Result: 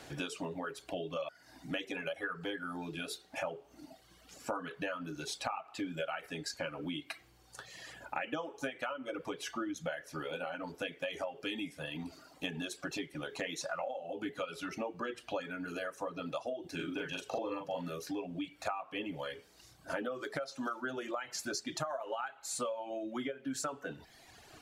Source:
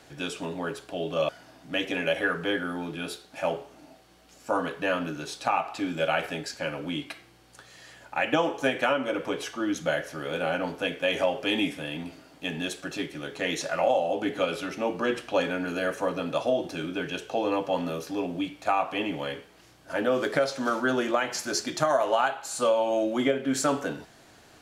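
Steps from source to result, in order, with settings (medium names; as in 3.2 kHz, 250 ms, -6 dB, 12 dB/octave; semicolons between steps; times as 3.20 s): dynamic bell 1.3 kHz, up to +5 dB, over -43 dBFS, Q 5.2; compression 6:1, threshold -37 dBFS, peak gain reduction 17.5 dB; reverb removal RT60 1.6 s; 16.75–17.88 s: doubling 41 ms -3.5 dB; trim +2 dB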